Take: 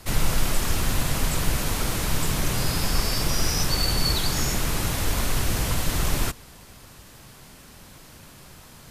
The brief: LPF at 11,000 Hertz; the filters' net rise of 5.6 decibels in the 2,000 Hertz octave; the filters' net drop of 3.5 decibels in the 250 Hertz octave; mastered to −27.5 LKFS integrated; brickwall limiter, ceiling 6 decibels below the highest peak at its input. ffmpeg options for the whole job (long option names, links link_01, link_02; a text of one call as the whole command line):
ffmpeg -i in.wav -af "lowpass=11000,equalizer=frequency=250:width_type=o:gain=-5.5,equalizer=frequency=2000:width_type=o:gain=7,volume=-1.5dB,alimiter=limit=-16dB:level=0:latency=1" out.wav